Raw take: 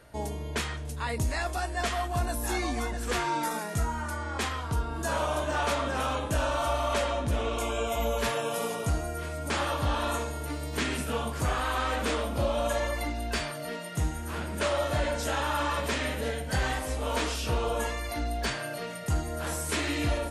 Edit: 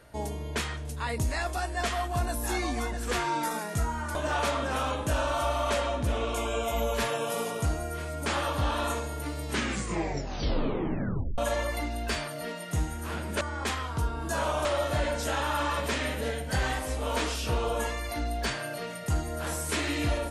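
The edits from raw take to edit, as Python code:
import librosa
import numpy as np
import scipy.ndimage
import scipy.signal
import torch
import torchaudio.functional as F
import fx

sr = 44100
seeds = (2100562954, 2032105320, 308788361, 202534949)

y = fx.edit(x, sr, fx.move(start_s=4.15, length_s=1.24, to_s=14.65),
    fx.tape_stop(start_s=10.68, length_s=1.94), tone=tone)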